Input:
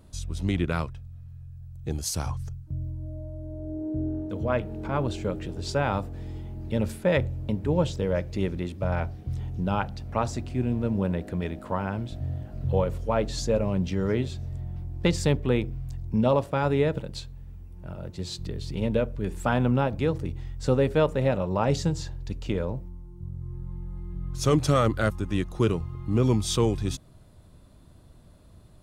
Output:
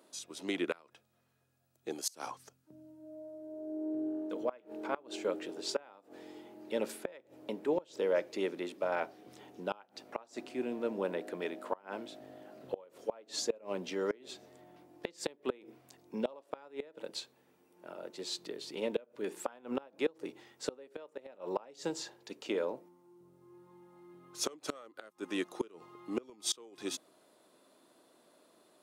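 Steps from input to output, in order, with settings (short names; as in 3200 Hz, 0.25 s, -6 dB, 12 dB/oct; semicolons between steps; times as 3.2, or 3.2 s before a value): HPF 310 Hz 24 dB/oct; flipped gate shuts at -18 dBFS, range -26 dB; gain -2 dB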